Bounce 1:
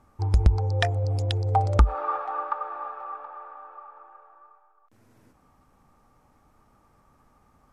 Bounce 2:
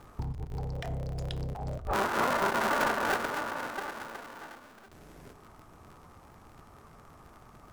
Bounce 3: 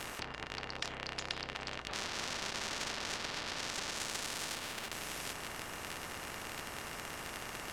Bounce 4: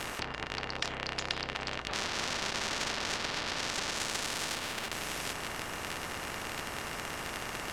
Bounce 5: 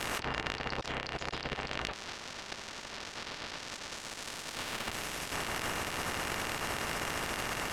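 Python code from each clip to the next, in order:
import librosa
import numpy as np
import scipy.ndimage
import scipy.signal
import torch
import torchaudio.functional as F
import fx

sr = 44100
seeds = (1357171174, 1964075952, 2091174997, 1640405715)

y1 = fx.cycle_switch(x, sr, every=3, mode='inverted')
y1 = fx.over_compress(y1, sr, threshold_db=-33.0, ratio=-1.0)
y1 = fx.rev_fdn(y1, sr, rt60_s=0.81, lf_ratio=1.0, hf_ratio=0.5, size_ms=14.0, drr_db=11.5)
y2 = fx.env_lowpass_down(y1, sr, base_hz=2500.0, full_db=-29.5)
y2 = fx.small_body(y2, sr, hz=(1800.0, 2800.0), ring_ms=90, db=18)
y2 = fx.spectral_comp(y2, sr, ratio=10.0)
y2 = F.gain(torch.from_numpy(y2), -2.5).numpy()
y3 = fx.high_shelf(y2, sr, hz=8400.0, db=-4.5)
y3 = F.gain(torch.from_numpy(y3), 5.5).numpy()
y4 = fx.over_compress(y3, sr, threshold_db=-40.0, ratio=-0.5)
y4 = F.gain(torch.from_numpy(y4), 2.5).numpy()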